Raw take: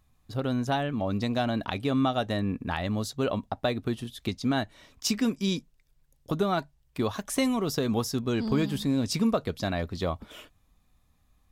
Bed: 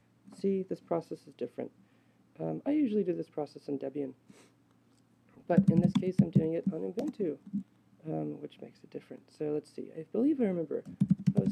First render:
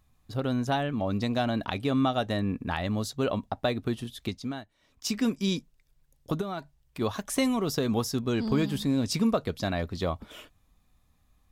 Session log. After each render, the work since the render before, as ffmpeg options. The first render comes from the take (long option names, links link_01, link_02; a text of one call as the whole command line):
ffmpeg -i in.wav -filter_complex "[0:a]asplit=3[link_01][link_02][link_03];[link_01]afade=type=out:start_time=6.4:duration=0.02[link_04];[link_02]acompressor=threshold=-36dB:ratio=2:attack=3.2:release=140:knee=1:detection=peak,afade=type=in:start_time=6.4:duration=0.02,afade=type=out:start_time=7:duration=0.02[link_05];[link_03]afade=type=in:start_time=7:duration=0.02[link_06];[link_04][link_05][link_06]amix=inputs=3:normalize=0,asplit=3[link_07][link_08][link_09];[link_07]atrim=end=4.64,asetpts=PTS-STARTPTS,afade=type=out:start_time=4.18:duration=0.46:silence=0.149624[link_10];[link_08]atrim=start=4.64:end=4.8,asetpts=PTS-STARTPTS,volume=-16.5dB[link_11];[link_09]atrim=start=4.8,asetpts=PTS-STARTPTS,afade=type=in:duration=0.46:silence=0.149624[link_12];[link_10][link_11][link_12]concat=n=3:v=0:a=1" out.wav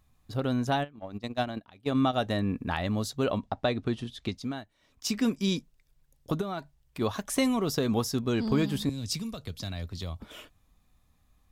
ffmpeg -i in.wav -filter_complex "[0:a]asplit=3[link_01][link_02][link_03];[link_01]afade=type=out:start_time=0.83:duration=0.02[link_04];[link_02]agate=range=-23dB:threshold=-27dB:ratio=16:release=100:detection=peak,afade=type=in:start_time=0.83:duration=0.02,afade=type=out:start_time=2.12:duration=0.02[link_05];[link_03]afade=type=in:start_time=2.12:duration=0.02[link_06];[link_04][link_05][link_06]amix=inputs=3:normalize=0,asettb=1/sr,asplit=3[link_07][link_08][link_09];[link_07]atrim=end=3.384[link_10];[link_08]atrim=start=3.38:end=4.34,asetpts=PTS-STARTPTS,afade=type=in:duration=0.004:curve=qsin,afade=type=out:start_time=0.956:duration=0.004:curve=qsin,lowpass=6600[link_11];[link_09]atrim=start=4.336[link_12];[link_10][link_11]acrossfade=duration=0.004:curve1=hsin:curve2=qsin[link_13];[link_13][link_12]acrossfade=duration=0.004:curve1=qsin:curve2=hsin,asettb=1/sr,asplit=3[link_14][link_15][link_16];[link_14]atrim=end=8.894[link_17];[link_15]atrim=start=8.89:end=10.2,asetpts=PTS-STARTPTS,afade=type=in:duration=0.004:curve=qsin,afade=type=out:start_time=1.306:duration=0.004:curve=qsin,acrossover=split=140|3000[link_18][link_19][link_20];[link_19]acompressor=threshold=-47dB:ratio=2.5:attack=3.2:release=140:knee=2.83:detection=peak[link_21];[link_18][link_21][link_20]amix=inputs=3:normalize=0[link_22];[link_16]atrim=start=10.196[link_23];[link_17][link_22]acrossfade=duration=0.004:curve1=hsin:curve2=qsin[link_24];[link_24][link_23]acrossfade=duration=0.004:curve1=qsin:curve2=hsin" out.wav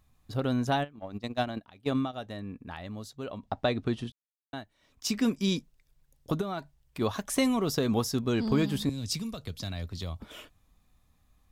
ffmpeg -i in.wav -filter_complex "[0:a]asplit=5[link_01][link_02][link_03][link_04][link_05];[link_01]atrim=end=2.08,asetpts=PTS-STARTPTS,afade=type=out:start_time=1.92:duration=0.16:silence=0.298538[link_06];[link_02]atrim=start=2.08:end=3.38,asetpts=PTS-STARTPTS,volume=-10.5dB[link_07];[link_03]atrim=start=3.38:end=4.12,asetpts=PTS-STARTPTS,afade=type=in:duration=0.16:silence=0.298538,afade=type=out:start_time=0.736:duration=0.004:curve=hsin[link_08];[link_04]atrim=start=4.12:end=4.53,asetpts=PTS-STARTPTS,volume=0[link_09];[link_05]atrim=start=4.53,asetpts=PTS-STARTPTS,afade=type=in:duration=0.004:curve=hsin[link_10];[link_06][link_07][link_08][link_09][link_10]concat=n=5:v=0:a=1" out.wav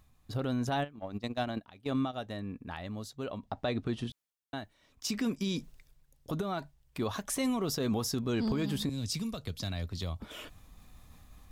ffmpeg -i in.wav -af "areverse,acompressor=mode=upward:threshold=-41dB:ratio=2.5,areverse,alimiter=limit=-23dB:level=0:latency=1:release=48" out.wav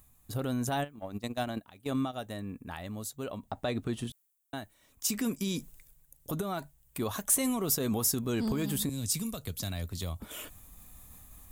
ffmpeg -i in.wav -af "aexciter=amount=2.6:drive=9.2:freq=7000,volume=19dB,asoftclip=hard,volume=-19dB" out.wav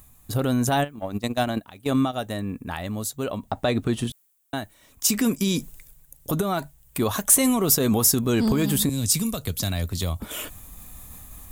ffmpeg -i in.wav -af "volume=9.5dB" out.wav